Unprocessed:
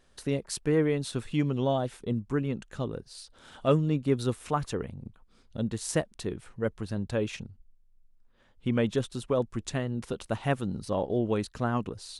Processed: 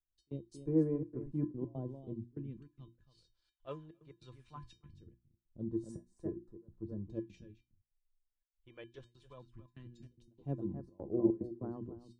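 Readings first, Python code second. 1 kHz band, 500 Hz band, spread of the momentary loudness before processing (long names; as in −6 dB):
−21.5 dB, −12.5 dB, 11 LU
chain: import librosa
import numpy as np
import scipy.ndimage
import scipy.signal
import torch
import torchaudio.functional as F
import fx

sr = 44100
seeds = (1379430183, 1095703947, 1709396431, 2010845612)

y = x + 10.0 ** (-8.5 / 20.0) * np.pad(x, (int(275 * sr / 1000.0), 0))[:len(x)]
y = fx.phaser_stages(y, sr, stages=2, low_hz=220.0, high_hz=2800.0, hz=0.2, feedback_pct=35)
y = fx.tilt_shelf(y, sr, db=9.0, hz=800.0)
y = fx.step_gate(y, sr, bpm=146, pattern='xx.x.xxxxx.x', floor_db=-24.0, edge_ms=4.5)
y = scipy.signal.sosfilt(scipy.signal.bessel(2, 3700.0, 'lowpass', norm='mag', fs=sr, output='sos'), y)
y = fx.low_shelf(y, sr, hz=320.0, db=-3.5)
y = fx.hum_notches(y, sr, base_hz=60, count=6)
y = fx.comb_fb(y, sr, f0_hz=340.0, decay_s=0.22, harmonics='odd', damping=0.0, mix_pct=90)
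y = fx.band_widen(y, sr, depth_pct=70)
y = F.gain(torch.from_numpy(y), 1.5).numpy()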